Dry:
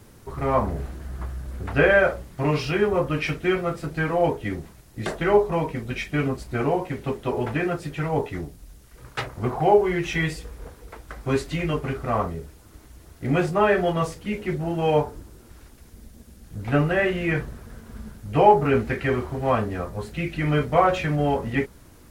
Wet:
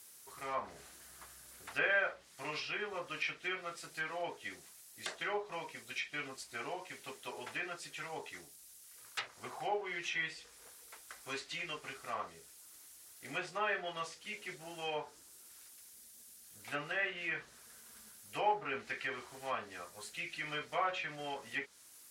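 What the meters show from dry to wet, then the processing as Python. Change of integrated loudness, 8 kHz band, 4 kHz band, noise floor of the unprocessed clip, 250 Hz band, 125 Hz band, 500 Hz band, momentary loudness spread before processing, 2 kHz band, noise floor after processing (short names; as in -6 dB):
-16.0 dB, -4.0 dB, -6.5 dB, -50 dBFS, -25.5 dB, -31.5 dB, -20.5 dB, 16 LU, -9.5 dB, -59 dBFS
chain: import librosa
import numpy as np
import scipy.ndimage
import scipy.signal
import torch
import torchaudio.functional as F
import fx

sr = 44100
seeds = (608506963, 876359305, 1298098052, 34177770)

y = np.diff(x, prepend=0.0)
y = fx.env_lowpass_down(y, sr, base_hz=2900.0, full_db=-36.0)
y = F.gain(torch.from_numpy(y), 2.5).numpy()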